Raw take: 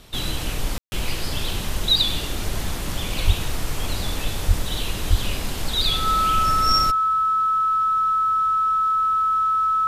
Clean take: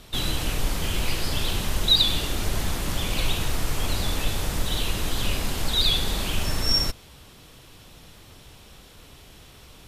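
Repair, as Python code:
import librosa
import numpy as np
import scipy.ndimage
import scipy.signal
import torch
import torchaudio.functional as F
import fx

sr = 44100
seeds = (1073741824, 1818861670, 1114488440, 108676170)

y = fx.notch(x, sr, hz=1300.0, q=30.0)
y = fx.fix_deplosive(y, sr, at_s=(3.26, 4.47, 5.09))
y = fx.fix_ambience(y, sr, seeds[0], print_start_s=2.68, print_end_s=3.18, start_s=0.78, end_s=0.92)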